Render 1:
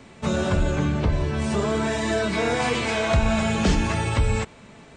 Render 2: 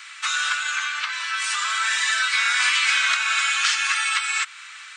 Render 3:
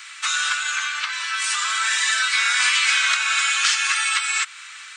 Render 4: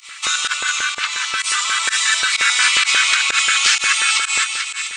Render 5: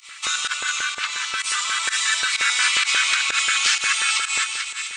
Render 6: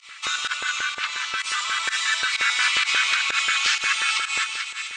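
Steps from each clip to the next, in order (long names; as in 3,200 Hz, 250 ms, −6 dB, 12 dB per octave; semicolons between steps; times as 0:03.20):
elliptic high-pass filter 1,300 Hz, stop band 70 dB; in parallel at +2.5 dB: downward compressor, threshold −39 dBFS, peak gain reduction 12.5 dB; on the sum: level +7 dB
high-shelf EQ 5,300 Hz +6 dB
echo with a time of its own for lows and highs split 1,400 Hz, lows 181 ms, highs 439 ms, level −7 dB; fake sidechain pumping 127 BPM, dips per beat 1, −22 dB, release 73 ms; auto-filter notch square 5.6 Hz 470–1,600 Hz; level +4.5 dB
echo machine with several playback heads 117 ms, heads first and third, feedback 41%, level −20 dB; level −4.5 dB
high-frequency loss of the air 80 metres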